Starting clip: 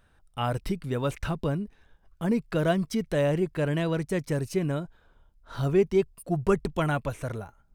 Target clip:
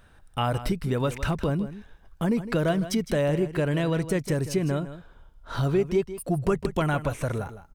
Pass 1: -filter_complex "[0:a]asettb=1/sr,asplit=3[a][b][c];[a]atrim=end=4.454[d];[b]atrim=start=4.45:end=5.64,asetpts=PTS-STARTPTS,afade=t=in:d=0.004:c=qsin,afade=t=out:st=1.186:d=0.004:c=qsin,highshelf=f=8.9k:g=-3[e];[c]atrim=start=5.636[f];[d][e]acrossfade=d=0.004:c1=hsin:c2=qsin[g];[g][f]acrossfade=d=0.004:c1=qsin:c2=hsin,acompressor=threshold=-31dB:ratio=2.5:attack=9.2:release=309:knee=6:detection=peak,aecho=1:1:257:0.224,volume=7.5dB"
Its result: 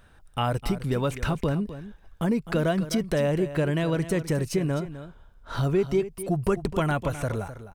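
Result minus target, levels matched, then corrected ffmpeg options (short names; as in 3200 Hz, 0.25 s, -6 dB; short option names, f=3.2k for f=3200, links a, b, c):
echo 98 ms late
-filter_complex "[0:a]asettb=1/sr,asplit=3[a][b][c];[a]atrim=end=4.454[d];[b]atrim=start=4.45:end=5.64,asetpts=PTS-STARTPTS,afade=t=in:d=0.004:c=qsin,afade=t=out:st=1.186:d=0.004:c=qsin,highshelf=f=8.9k:g=-3[e];[c]atrim=start=5.636[f];[d][e]acrossfade=d=0.004:c1=hsin:c2=qsin[g];[g][f]acrossfade=d=0.004:c1=qsin:c2=hsin,acompressor=threshold=-31dB:ratio=2.5:attack=9.2:release=309:knee=6:detection=peak,aecho=1:1:159:0.224,volume=7.5dB"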